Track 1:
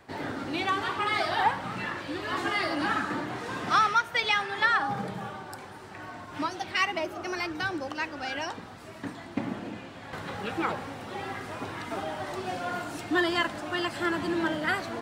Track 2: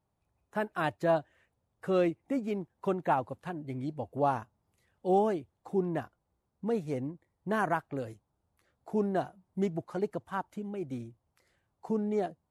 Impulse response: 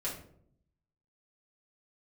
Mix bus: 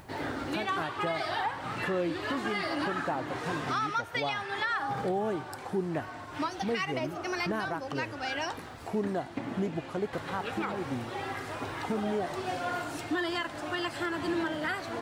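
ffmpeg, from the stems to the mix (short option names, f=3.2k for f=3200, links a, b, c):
-filter_complex "[0:a]equalizer=f=200:t=o:w=0.23:g=-12,volume=0dB[a];[1:a]acompressor=mode=upward:threshold=-34dB:ratio=2.5,volume=1.5dB[b];[a][b]amix=inputs=2:normalize=0,alimiter=limit=-22dB:level=0:latency=1:release=223"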